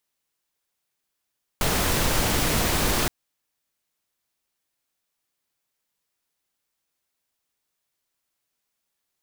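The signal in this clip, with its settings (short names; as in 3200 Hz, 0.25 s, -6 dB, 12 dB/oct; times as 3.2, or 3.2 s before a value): noise pink, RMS -22.5 dBFS 1.47 s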